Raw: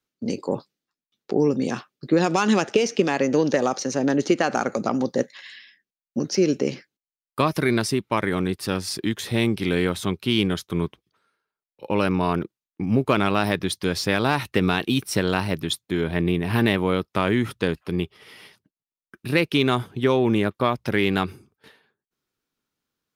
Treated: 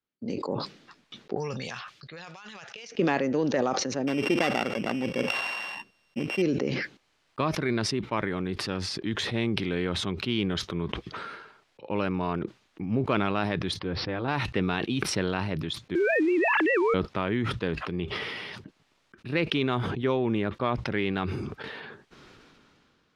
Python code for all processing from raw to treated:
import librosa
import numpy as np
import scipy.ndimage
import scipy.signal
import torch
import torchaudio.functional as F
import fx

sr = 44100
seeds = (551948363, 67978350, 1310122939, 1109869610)

y = fx.chain(x, sr, fx.tone_stack(knobs='10-0-10'),
    fx.over_compress(threshold_db=-37.0, ratio=-1.0), at=(1.35, 2.92))
y = fx.chain(y, sr, fx.sample_sort(block=16),
    fx.peak_eq(hz=13000.0, db=12.5, octaves=0.24), at=(4.07, 6.42))
y = fx.chain(y, sr, fx.lowpass(hz=1100.0, slope=6),
    fx.notch_comb(f0_hz=210.0),
    fx.resample_bad(factor=4, down='none', up='filtered'), at=(13.79, 14.28))
y = fx.chain(y, sr, fx.sine_speech(),
    fx.quant_companded(bits=6),
    fx.env_flatten(amount_pct=100), at=(15.95, 16.94))
y = scipy.signal.sosfilt(scipy.signal.butter(2, 3800.0, 'lowpass', fs=sr, output='sos'), y)
y = fx.sustainer(y, sr, db_per_s=22.0)
y = y * 10.0 ** (-7.0 / 20.0)